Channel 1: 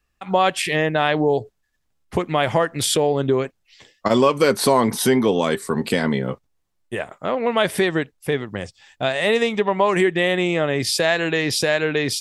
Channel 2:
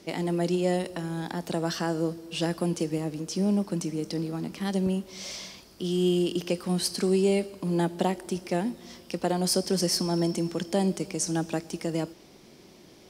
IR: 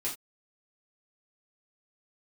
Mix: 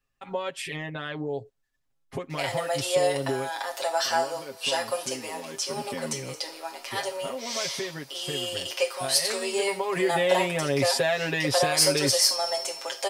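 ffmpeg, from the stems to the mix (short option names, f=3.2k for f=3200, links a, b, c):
-filter_complex "[0:a]acompressor=threshold=-27dB:ratio=2,volume=7dB,afade=t=out:st=3.38:d=0.69:silence=0.316228,afade=t=in:st=5.38:d=0.54:silence=0.398107,afade=t=in:st=9.6:d=0.44:silence=0.375837[a];[1:a]highpass=f=630:w=0.5412,highpass=f=630:w=1.3066,adelay=2300,volume=0dB,asplit=2[b][c];[c]volume=-4dB[d];[2:a]atrim=start_sample=2205[e];[d][e]afir=irnorm=-1:irlink=0[f];[a][b][f]amix=inputs=3:normalize=0,equalizer=f=540:t=o:w=0.22:g=2.5,aecho=1:1:7.4:0.94"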